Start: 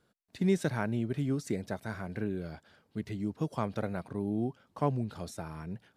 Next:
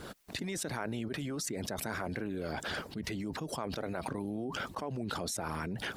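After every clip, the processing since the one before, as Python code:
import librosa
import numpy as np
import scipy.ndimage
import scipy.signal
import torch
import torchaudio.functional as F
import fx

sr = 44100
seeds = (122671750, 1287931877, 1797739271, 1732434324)

y = fx.hpss(x, sr, part='harmonic', gain_db=-16)
y = fx.env_flatten(y, sr, amount_pct=100)
y = y * librosa.db_to_amplitude(-9.0)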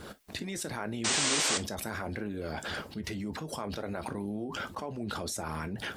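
y = fx.spec_paint(x, sr, seeds[0], shape='noise', start_s=1.04, length_s=0.54, low_hz=230.0, high_hz=9000.0, level_db=-29.0)
y = fx.rev_gated(y, sr, seeds[1], gate_ms=80, shape='falling', drr_db=9.0)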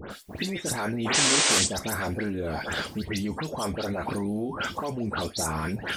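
y = fx.dispersion(x, sr, late='highs', ms=110.0, hz=2500.0)
y = y * librosa.db_to_amplitude(6.5)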